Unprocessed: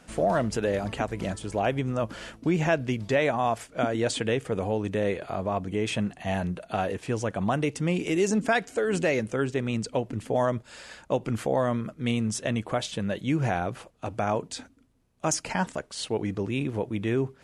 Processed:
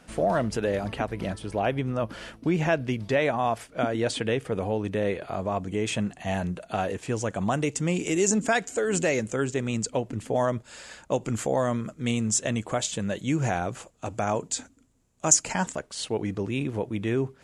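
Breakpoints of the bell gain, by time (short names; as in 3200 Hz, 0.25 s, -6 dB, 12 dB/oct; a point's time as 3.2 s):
bell 7200 Hz 0.44 oct
-2.5 dB
from 0.91 s -9.5 dB
from 2.11 s -3.5 dB
from 5.33 s +6.5 dB
from 7.24 s +13 dB
from 9.9 s +5.5 dB
from 11.12 s +14 dB
from 15.73 s +3 dB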